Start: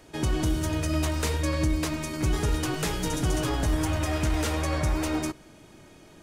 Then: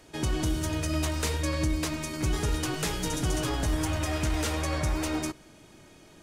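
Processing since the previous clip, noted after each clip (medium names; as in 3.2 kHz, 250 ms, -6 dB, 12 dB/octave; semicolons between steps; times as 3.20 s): peaking EQ 6.1 kHz +3 dB 2.9 oct; trim -2.5 dB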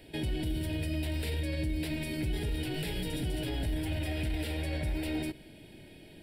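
peak limiter -27 dBFS, peak gain reduction 10 dB; static phaser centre 2.8 kHz, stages 4; trim +3 dB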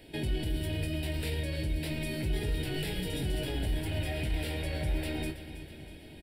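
doubling 21 ms -7 dB; on a send: feedback delay 324 ms, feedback 57%, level -12.5 dB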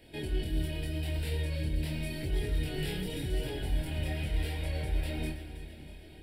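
reverberation RT60 2.3 s, pre-delay 22 ms, DRR 10 dB; chorus voices 2, 0.86 Hz, delay 25 ms, depth 1.5 ms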